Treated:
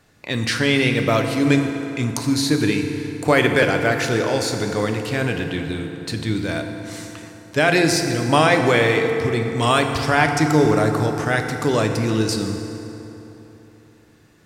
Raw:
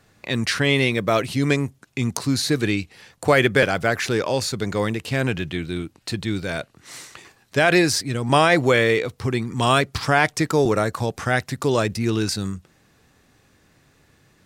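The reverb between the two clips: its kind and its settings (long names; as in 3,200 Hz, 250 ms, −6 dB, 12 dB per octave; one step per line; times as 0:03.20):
feedback delay network reverb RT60 3.5 s, high-frequency decay 0.6×, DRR 4 dB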